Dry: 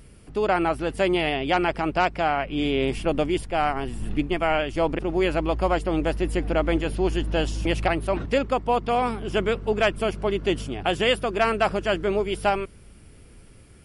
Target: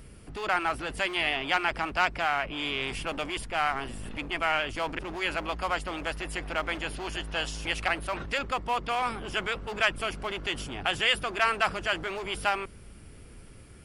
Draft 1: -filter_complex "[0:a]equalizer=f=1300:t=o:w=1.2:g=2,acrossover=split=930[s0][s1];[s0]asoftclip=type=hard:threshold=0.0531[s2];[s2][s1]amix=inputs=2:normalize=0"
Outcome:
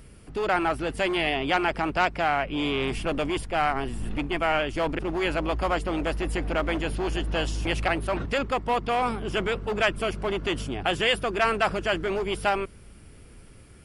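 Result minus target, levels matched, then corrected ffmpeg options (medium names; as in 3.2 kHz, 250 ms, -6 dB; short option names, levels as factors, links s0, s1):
hard clipper: distortion -5 dB
-filter_complex "[0:a]equalizer=f=1300:t=o:w=1.2:g=2,acrossover=split=930[s0][s1];[s0]asoftclip=type=hard:threshold=0.0141[s2];[s2][s1]amix=inputs=2:normalize=0"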